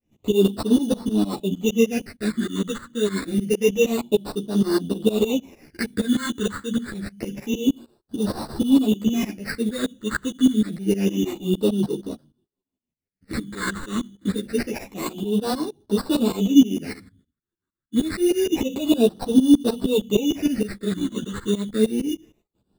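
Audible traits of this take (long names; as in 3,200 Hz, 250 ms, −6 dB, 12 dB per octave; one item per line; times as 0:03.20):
aliases and images of a low sample rate 3,200 Hz, jitter 0%
phaser sweep stages 8, 0.27 Hz, lowest notch 710–2,300 Hz
tremolo saw up 6.5 Hz, depth 95%
a shimmering, thickened sound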